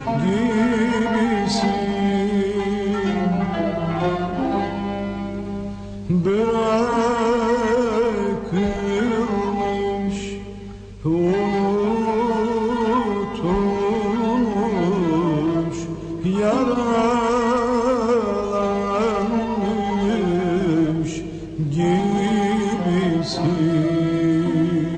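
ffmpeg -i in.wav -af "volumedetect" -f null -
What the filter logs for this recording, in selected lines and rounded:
mean_volume: -20.1 dB
max_volume: -9.3 dB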